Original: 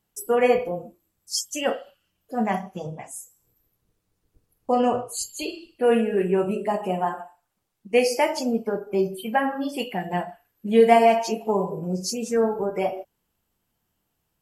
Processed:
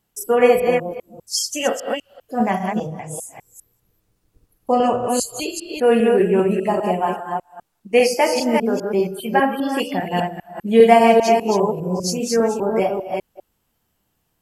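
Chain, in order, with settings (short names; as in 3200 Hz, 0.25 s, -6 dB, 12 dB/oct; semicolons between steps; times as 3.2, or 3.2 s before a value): reverse delay 0.2 s, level -3.5 dB; gain +4 dB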